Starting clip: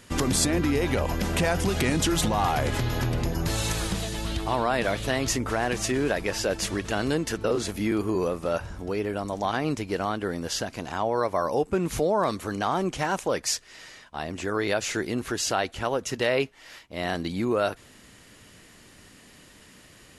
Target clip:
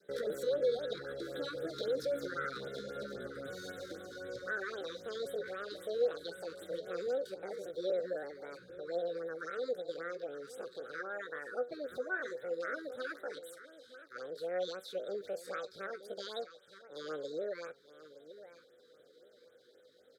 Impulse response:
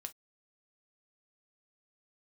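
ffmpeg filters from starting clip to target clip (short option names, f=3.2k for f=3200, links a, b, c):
-filter_complex "[0:a]adynamicequalizer=threshold=0.0141:dfrequency=480:dqfactor=1:tfrequency=480:tqfactor=1:attack=5:release=100:ratio=0.375:range=3:mode=cutabove:tftype=bell,acrossover=split=280[a][b];[a]crystalizer=i=1.5:c=0[c];[c][b]amix=inputs=2:normalize=0,asplit=3[d][e][f];[d]bandpass=f=300:t=q:w=8,volume=0dB[g];[e]bandpass=f=870:t=q:w=8,volume=-6dB[h];[f]bandpass=f=2.24k:t=q:w=8,volume=-9dB[i];[g][h][i]amix=inputs=3:normalize=0,flanger=delay=8.6:depth=5.2:regen=69:speed=0.13:shape=sinusoidal,asetrate=74167,aresample=44100,atempo=0.594604,asplit=2[j][k];[k]aecho=0:1:919|1838:0.188|0.0339[l];[j][l]amix=inputs=2:normalize=0,afftfilt=real='re*(1-between(b*sr/1024,660*pow(5800/660,0.5+0.5*sin(2*PI*3.8*pts/sr))/1.41,660*pow(5800/660,0.5+0.5*sin(2*PI*3.8*pts/sr))*1.41))':imag='im*(1-between(b*sr/1024,660*pow(5800/660,0.5+0.5*sin(2*PI*3.8*pts/sr))/1.41,660*pow(5800/660,0.5+0.5*sin(2*PI*3.8*pts/sr))*1.41))':win_size=1024:overlap=0.75,volume=5.5dB"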